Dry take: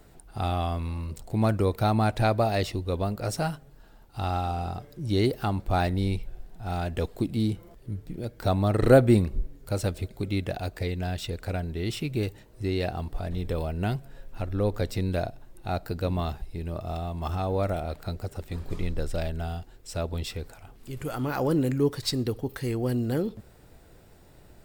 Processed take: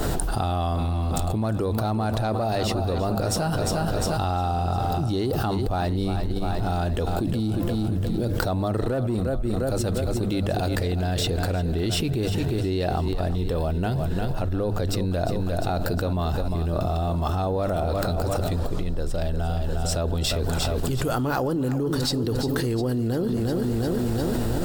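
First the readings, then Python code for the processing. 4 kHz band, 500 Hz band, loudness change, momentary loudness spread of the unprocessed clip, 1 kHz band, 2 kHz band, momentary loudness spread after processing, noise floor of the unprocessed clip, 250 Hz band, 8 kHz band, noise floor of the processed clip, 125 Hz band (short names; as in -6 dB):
+6.0 dB, +2.5 dB, +3.0 dB, 12 LU, +4.0 dB, +2.5 dB, 2 LU, -53 dBFS, +3.5 dB, +9.5 dB, -26 dBFS, +4.0 dB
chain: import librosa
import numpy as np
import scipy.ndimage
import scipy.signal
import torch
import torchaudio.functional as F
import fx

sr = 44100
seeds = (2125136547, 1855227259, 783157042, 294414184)

y = fx.high_shelf(x, sr, hz=11000.0, db=-3.0)
y = fx.hum_notches(y, sr, base_hz=50, count=4)
y = fx.echo_feedback(y, sr, ms=353, feedback_pct=54, wet_db=-12.0)
y = 10.0 ** (-12.5 / 20.0) * np.tanh(y / 10.0 ** (-12.5 / 20.0))
y = fx.peak_eq(y, sr, hz=2200.0, db=-8.5, octaves=0.48)
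y = fx.env_flatten(y, sr, amount_pct=100)
y = y * librosa.db_to_amplitude(-8.0)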